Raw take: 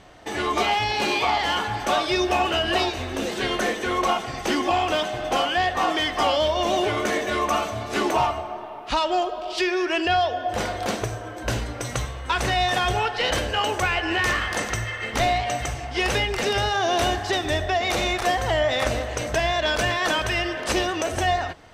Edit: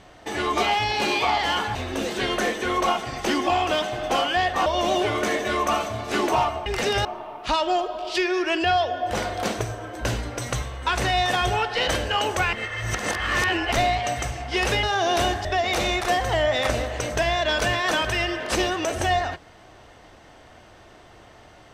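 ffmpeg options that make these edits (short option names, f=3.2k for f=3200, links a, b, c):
-filter_complex "[0:a]asplit=9[a][b][c][d][e][f][g][h][i];[a]atrim=end=1.752[j];[b]atrim=start=2.958:end=5.872[k];[c]atrim=start=6.478:end=8.482[l];[d]atrim=start=16.258:end=16.652[m];[e]atrim=start=8.478:end=13.962[n];[f]atrim=start=13.958:end=15.152,asetpts=PTS-STARTPTS,areverse[o];[g]atrim=start=15.148:end=16.262[p];[h]atrim=start=16.648:end=17.272[q];[i]atrim=start=17.618[r];[j][k]acrossfade=d=0.004:c1=hsin:c2=hsin[s];[s][l]acrossfade=d=0.004:c1=hsin:c2=hsin[t];[t][m]acrossfade=d=0.004:c1=hsin:c2=hsin[u];[u][n]acrossfade=d=0.004:c1=hsin:c2=hsin[v];[v][o]acrossfade=d=0.004:c1=hsin:c2=hsin[w];[w][p]acrossfade=d=0.004:c1=hsin:c2=hsin[x];[x][q]acrossfade=d=0.004:c1=hsin:c2=hsin[y];[y][r]acrossfade=d=0.004:c1=hsin:c2=hsin"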